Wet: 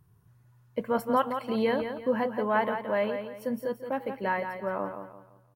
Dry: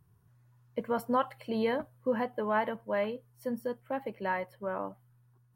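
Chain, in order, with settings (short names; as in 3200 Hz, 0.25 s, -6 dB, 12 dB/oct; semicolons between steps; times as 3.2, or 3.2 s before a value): feedback echo 0.171 s, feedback 34%, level -8 dB; gain +3 dB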